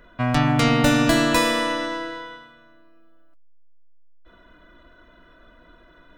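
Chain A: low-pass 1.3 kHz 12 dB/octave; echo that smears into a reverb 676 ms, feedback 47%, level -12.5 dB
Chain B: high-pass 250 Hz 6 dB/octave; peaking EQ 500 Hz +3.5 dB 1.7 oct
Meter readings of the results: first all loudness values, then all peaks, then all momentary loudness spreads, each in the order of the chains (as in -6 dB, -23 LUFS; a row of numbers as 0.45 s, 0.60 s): -21.5 LUFS, -20.0 LUFS; -6.5 dBFS, -4.0 dBFS; 20 LU, 14 LU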